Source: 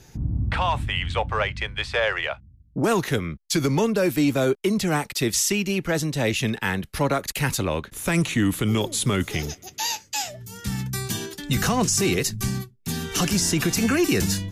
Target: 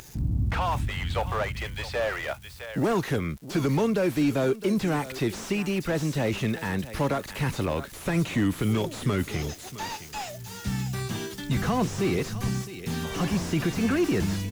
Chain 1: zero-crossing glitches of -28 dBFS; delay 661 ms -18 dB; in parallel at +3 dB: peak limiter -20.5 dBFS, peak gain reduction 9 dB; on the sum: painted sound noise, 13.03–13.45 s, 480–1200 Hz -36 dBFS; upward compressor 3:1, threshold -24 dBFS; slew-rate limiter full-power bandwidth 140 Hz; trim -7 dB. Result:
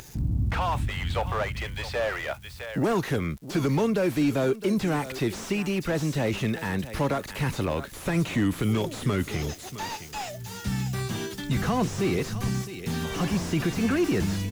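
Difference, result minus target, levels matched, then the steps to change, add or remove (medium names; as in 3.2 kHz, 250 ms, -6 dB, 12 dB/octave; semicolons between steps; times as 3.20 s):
zero-crossing glitches: distortion -9 dB
change: zero-crossing glitches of -19 dBFS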